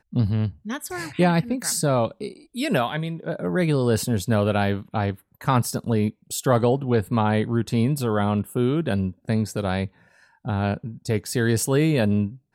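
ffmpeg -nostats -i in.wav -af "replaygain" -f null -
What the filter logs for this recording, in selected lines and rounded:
track_gain = +4.7 dB
track_peak = 0.321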